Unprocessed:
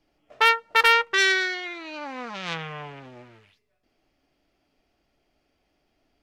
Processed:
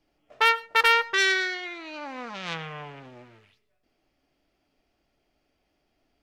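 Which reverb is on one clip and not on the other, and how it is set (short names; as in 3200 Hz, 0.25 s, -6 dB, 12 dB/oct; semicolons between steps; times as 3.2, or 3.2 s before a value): digital reverb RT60 0.42 s, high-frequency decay 0.4×, pre-delay 65 ms, DRR 19.5 dB; gain -2 dB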